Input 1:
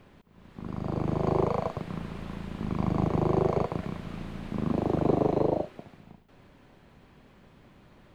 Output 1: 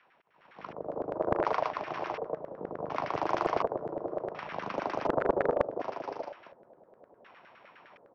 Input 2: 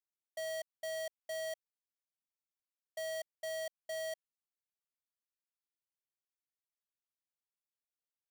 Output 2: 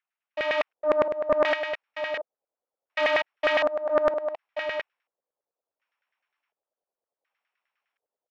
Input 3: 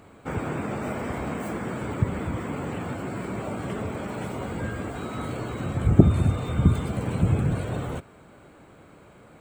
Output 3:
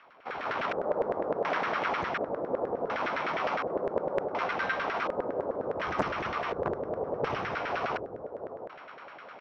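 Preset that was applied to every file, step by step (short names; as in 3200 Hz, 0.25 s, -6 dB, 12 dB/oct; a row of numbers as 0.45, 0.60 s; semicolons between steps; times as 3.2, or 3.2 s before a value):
sample sorter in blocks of 8 samples; in parallel at -2 dB: compressor, threshold -32 dBFS; on the sum: low shelf 86 Hz -10.5 dB; AM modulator 300 Hz, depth 40%; high shelf 2100 Hz +11.5 dB; on a send: echo 0.673 s -7.5 dB; on the sum: frequency shift -31 Hz; LFO low-pass square 0.69 Hz 510–2600 Hz; hard clip -13.5 dBFS; LFO band-pass saw down 9.8 Hz 590–1700 Hz; AGC gain up to 10 dB; Doppler distortion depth 0.52 ms; normalise peaks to -12 dBFS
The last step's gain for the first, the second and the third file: -5.0, +8.0, -3.0 dB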